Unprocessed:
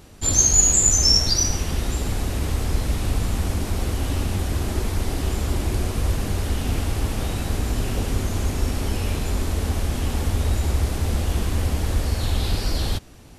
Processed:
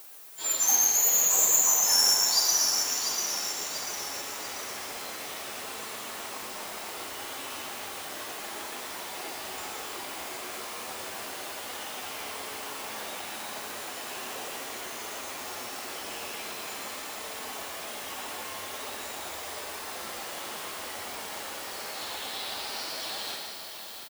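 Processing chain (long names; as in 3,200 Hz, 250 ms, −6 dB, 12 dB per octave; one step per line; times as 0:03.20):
stylus tracing distortion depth 0.052 ms
high-pass filter 720 Hz 12 dB per octave
high-shelf EQ 5,600 Hz −3.5 dB
background noise violet −45 dBFS
time stretch by phase vocoder 1.8×
single-tap delay 117 ms −7.5 dB
four-comb reverb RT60 3.2 s, combs from 29 ms, DRR 3.5 dB
feedback echo at a low word length 691 ms, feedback 55%, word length 7 bits, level −7 dB
level −2 dB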